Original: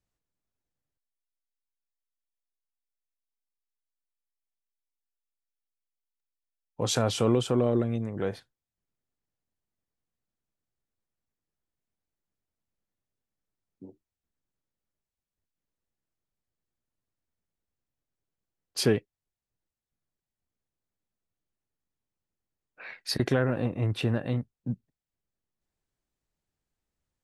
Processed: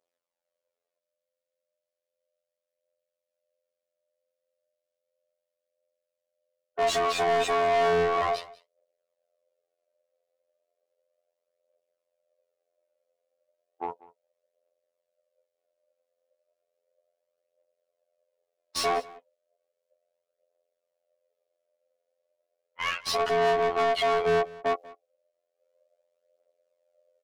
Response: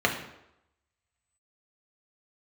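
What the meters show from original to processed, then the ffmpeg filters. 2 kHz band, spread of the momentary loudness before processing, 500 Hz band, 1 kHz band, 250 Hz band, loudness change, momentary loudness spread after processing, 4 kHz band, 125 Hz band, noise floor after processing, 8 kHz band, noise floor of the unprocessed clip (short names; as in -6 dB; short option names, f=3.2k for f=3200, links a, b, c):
+8.0 dB, 13 LU, +4.5 dB, +14.0 dB, -12.0 dB, +2.5 dB, 12 LU, +2.5 dB, -15.0 dB, under -85 dBFS, -1.5 dB, under -85 dBFS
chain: -filter_complex "[0:a]agate=range=-18dB:threshold=-47dB:ratio=16:detection=peak,asubboost=boost=10.5:cutoff=92,acompressor=threshold=-28dB:ratio=6,alimiter=level_in=0.5dB:limit=-24dB:level=0:latency=1:release=127,volume=-0.5dB,aeval=exprs='val(0)*sin(2*PI*560*n/s)':c=same,aeval=exprs='(tanh(39.8*val(0)+0.55)-tanh(0.55))/39.8':c=same,afftfilt=real='hypot(re,im)*cos(PI*b)':imag='0':win_size=2048:overlap=0.75,aphaser=in_gain=1:out_gain=1:delay=4.2:decay=0.42:speed=0.34:type=triangular,asplit=2[a][b];[b]highpass=f=720:p=1,volume=31dB,asoftclip=type=tanh:threshold=-18.5dB[c];[a][c]amix=inputs=2:normalize=0,lowpass=f=4.4k:p=1,volume=-6dB,aecho=1:1:191:0.0891,volume=3dB"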